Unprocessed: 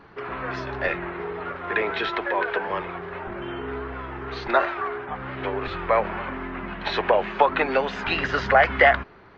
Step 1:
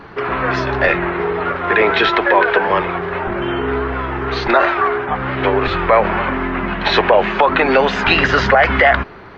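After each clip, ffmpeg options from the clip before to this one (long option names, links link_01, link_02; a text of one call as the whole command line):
ffmpeg -i in.wav -af "alimiter=level_in=13.5dB:limit=-1dB:release=50:level=0:latency=1,volume=-1dB" out.wav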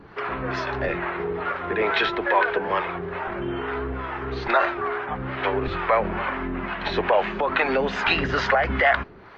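ffmpeg -i in.wav -filter_complex "[0:a]acrossover=split=500[link_01][link_02];[link_01]aeval=exprs='val(0)*(1-0.7/2+0.7/2*cos(2*PI*2.3*n/s))':channel_layout=same[link_03];[link_02]aeval=exprs='val(0)*(1-0.7/2-0.7/2*cos(2*PI*2.3*n/s))':channel_layout=same[link_04];[link_03][link_04]amix=inputs=2:normalize=0,volume=-5.5dB" out.wav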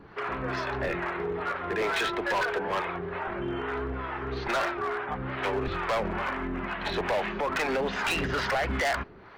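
ffmpeg -i in.wav -af "volume=20.5dB,asoftclip=hard,volume=-20.5dB,volume=-3.5dB" out.wav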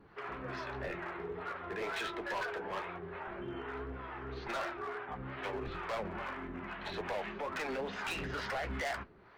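ffmpeg -i in.wav -af "flanger=delay=8.7:depth=7.8:regen=-45:speed=2:shape=triangular,volume=-6dB" out.wav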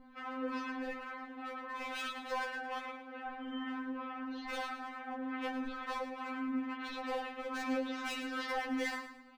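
ffmpeg -i in.wav -af "aeval=exprs='val(0)+0.00282*(sin(2*PI*50*n/s)+sin(2*PI*2*50*n/s)/2+sin(2*PI*3*50*n/s)/3+sin(2*PI*4*50*n/s)/4+sin(2*PI*5*50*n/s)/5)':channel_layout=same,aecho=1:1:110|220|330|440:0.299|0.102|0.0345|0.0117,afftfilt=real='re*3.46*eq(mod(b,12),0)':imag='im*3.46*eq(mod(b,12),0)':win_size=2048:overlap=0.75,volume=2dB" out.wav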